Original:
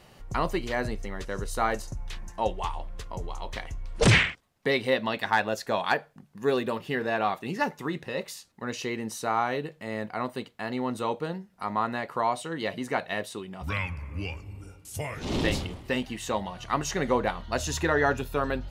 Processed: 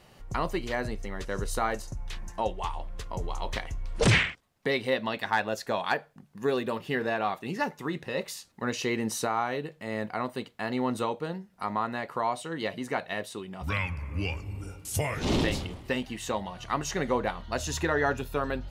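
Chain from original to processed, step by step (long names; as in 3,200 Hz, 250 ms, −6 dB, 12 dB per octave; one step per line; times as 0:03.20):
camcorder AGC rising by 5.8 dB per second
level −2.5 dB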